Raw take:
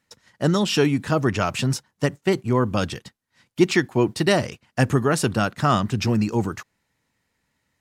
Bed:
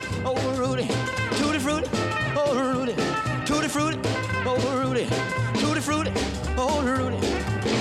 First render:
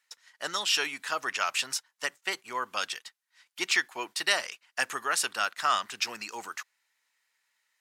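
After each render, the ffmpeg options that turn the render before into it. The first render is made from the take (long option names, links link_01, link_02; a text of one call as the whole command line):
ffmpeg -i in.wav -af "highpass=1300" out.wav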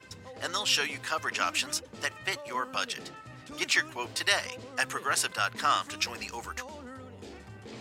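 ffmpeg -i in.wav -i bed.wav -filter_complex "[1:a]volume=-21dB[link_01];[0:a][link_01]amix=inputs=2:normalize=0" out.wav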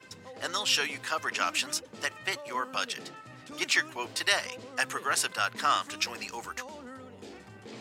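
ffmpeg -i in.wav -af "highpass=130" out.wav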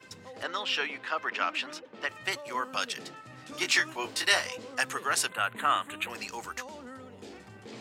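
ffmpeg -i in.wav -filter_complex "[0:a]asettb=1/sr,asplit=3[link_01][link_02][link_03];[link_01]atrim=end=0.434[link_04];[link_02]atrim=start=0.43:end=2.09,asetpts=PTS-STARTPTS,afade=type=in:duration=0.004:curve=qsin,afade=type=out:start_time=1.656:duration=0.004:curve=qsin,acrossover=split=190 3800:gain=0.158 1 0.0891[link_05][link_06][link_07];[link_05][link_06][link_07]amix=inputs=3:normalize=0[link_08];[link_03]atrim=start=2.086[link_09];[link_04][link_08]acrossfade=duration=0.004:curve1=hsin:curve2=qsin[link_10];[link_10][link_09]acrossfade=duration=0.004:curve1=qsin:curve2=hsin,asettb=1/sr,asplit=3[link_11][link_12][link_13];[link_11]atrim=end=3.354[link_14];[link_12]atrim=start=3.35:end=4.75,asetpts=PTS-STARTPTS,afade=type=in:duration=0.004:curve=qsin,afade=type=out:start_time=1.396:duration=0.004:curve=qsin,asplit=2[link_15][link_16];[link_16]adelay=22,volume=-4.5dB[link_17];[link_15][link_17]amix=inputs=2:normalize=0,atrim=end_sample=61740[link_18];[link_13]atrim=start=4.746[link_19];[link_14][link_18]acrossfade=duration=0.004:curve1=hsin:curve2=qsin[link_20];[link_20][link_19]acrossfade=duration=0.004:curve1=qsin:curve2=hsin,asettb=1/sr,asplit=3[link_21][link_22][link_23];[link_21]atrim=end=5.294[link_24];[link_22]atrim=start=5.29:end=6.1,asetpts=PTS-STARTPTS,afade=type=in:duration=0.004:curve=qsin,afade=type=out:start_time=0.806:duration=0.004:curve=qsin,asuperstop=centerf=5300:order=4:qfactor=1.1[link_25];[link_23]atrim=start=6.096[link_26];[link_24][link_25]acrossfade=duration=0.004:curve1=hsin:curve2=qsin[link_27];[link_27][link_26]acrossfade=duration=0.004:curve1=qsin:curve2=hsin" out.wav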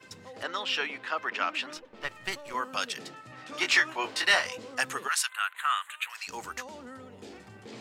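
ffmpeg -i in.wav -filter_complex "[0:a]asettb=1/sr,asplit=3[link_01][link_02][link_03];[link_01]atrim=end=1.774[link_04];[link_02]atrim=start=1.77:end=2.54,asetpts=PTS-STARTPTS,afade=type=in:duration=0.004:curve=qsin,afade=type=out:start_time=0.766:duration=0.004:curve=qsin,aeval=exprs='if(lt(val(0),0),0.447*val(0),val(0))':channel_layout=same[link_05];[link_03]atrim=start=2.536[link_06];[link_04][link_05]acrossfade=duration=0.004:curve1=hsin:curve2=qsin[link_07];[link_07][link_06]acrossfade=duration=0.004:curve1=qsin:curve2=hsin,asettb=1/sr,asplit=3[link_08][link_09][link_10];[link_08]atrim=end=3.324[link_11];[link_09]atrim=start=3.32:end=4.46,asetpts=PTS-STARTPTS,afade=type=in:duration=0.004:curve=qsin,afade=type=out:start_time=1.136:duration=0.004:curve=qsin,asplit=2[link_12][link_13];[link_13]highpass=frequency=720:poles=1,volume=10dB,asoftclip=type=tanh:threshold=-8dB[link_14];[link_12][link_14]amix=inputs=2:normalize=0,lowpass=frequency=2700:poles=1,volume=-6dB[link_15];[link_10]atrim=start=4.456[link_16];[link_11][link_15]acrossfade=duration=0.004:curve1=hsin:curve2=qsin[link_17];[link_17][link_16]acrossfade=duration=0.004:curve1=qsin:curve2=hsin,asplit=3[link_18][link_19][link_20];[link_18]afade=type=out:start_time=5.07:duration=0.02[link_21];[link_19]highpass=frequency=1100:width=0.5412,highpass=frequency=1100:width=1.3066,afade=type=in:start_time=5.07:duration=0.02,afade=type=out:start_time=6.27:duration=0.02[link_22];[link_20]afade=type=in:start_time=6.27:duration=0.02[link_23];[link_21][link_22][link_23]amix=inputs=3:normalize=0" out.wav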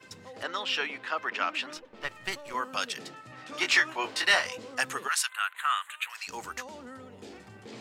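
ffmpeg -i in.wav -af anull out.wav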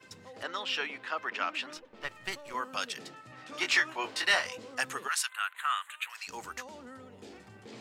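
ffmpeg -i in.wav -af "volume=-3dB" out.wav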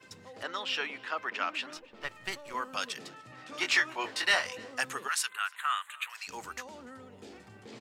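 ffmpeg -i in.wav -filter_complex "[0:a]asplit=2[link_01][link_02];[link_02]adelay=291.5,volume=-23dB,highshelf=frequency=4000:gain=-6.56[link_03];[link_01][link_03]amix=inputs=2:normalize=0" out.wav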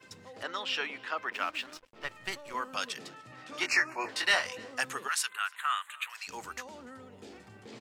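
ffmpeg -i in.wav -filter_complex "[0:a]asettb=1/sr,asplit=3[link_01][link_02][link_03];[link_01]atrim=end=1.324[link_04];[link_02]atrim=start=1.32:end=1.96,asetpts=PTS-STARTPTS,afade=type=in:duration=0.004:curve=qsin,afade=type=out:start_time=0.636:duration=0.004:curve=qsin,aeval=exprs='sgn(val(0))*max(abs(val(0))-0.00251,0)':channel_layout=same[link_05];[link_03]atrim=start=1.956[link_06];[link_04][link_05]acrossfade=duration=0.004:curve1=hsin:curve2=qsin[link_07];[link_07][link_06]acrossfade=duration=0.004:curve1=qsin:curve2=hsin,asettb=1/sr,asplit=3[link_08][link_09][link_10];[link_08]atrim=end=3.664[link_11];[link_09]atrim=start=3.66:end=4.09,asetpts=PTS-STARTPTS,afade=type=in:duration=0.004:curve=qsin,afade=type=out:start_time=0.426:duration=0.004:curve=qsin,asuperstop=centerf=3400:order=8:qfactor=2[link_12];[link_10]atrim=start=4.086[link_13];[link_11][link_12]acrossfade=duration=0.004:curve1=hsin:curve2=qsin[link_14];[link_14][link_13]acrossfade=duration=0.004:curve1=qsin:curve2=hsin" out.wav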